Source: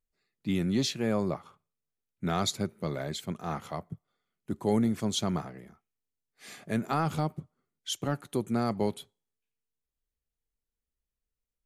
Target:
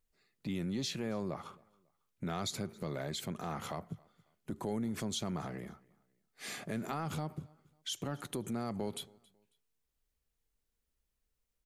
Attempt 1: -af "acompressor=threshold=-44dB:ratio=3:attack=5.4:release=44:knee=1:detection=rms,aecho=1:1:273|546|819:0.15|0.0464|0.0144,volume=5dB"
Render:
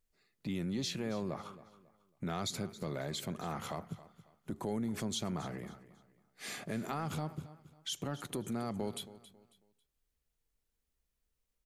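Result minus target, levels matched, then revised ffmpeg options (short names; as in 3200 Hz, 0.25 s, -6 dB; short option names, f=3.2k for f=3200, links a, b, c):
echo-to-direct +9 dB
-af "acompressor=threshold=-44dB:ratio=3:attack=5.4:release=44:knee=1:detection=rms,aecho=1:1:273|546:0.0531|0.0165,volume=5dB"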